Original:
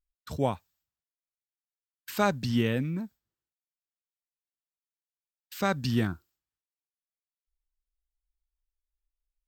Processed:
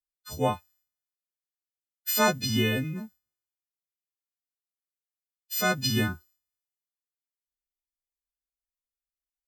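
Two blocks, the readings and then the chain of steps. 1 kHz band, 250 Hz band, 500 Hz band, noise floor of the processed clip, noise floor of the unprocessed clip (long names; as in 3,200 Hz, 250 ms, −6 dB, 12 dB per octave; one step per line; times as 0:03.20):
+2.0 dB, −0.5 dB, +1.5 dB, below −85 dBFS, below −85 dBFS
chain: every partial snapped to a pitch grid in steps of 3 semitones
multiband upward and downward expander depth 40%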